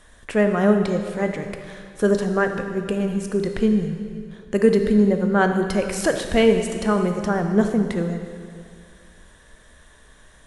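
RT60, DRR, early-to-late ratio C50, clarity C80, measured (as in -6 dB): 2.2 s, 5.5 dB, 6.5 dB, 7.5 dB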